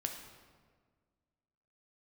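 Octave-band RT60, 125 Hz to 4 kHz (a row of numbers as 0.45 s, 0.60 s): 2.0 s, 2.0 s, 1.8 s, 1.5 s, 1.3 s, 1.0 s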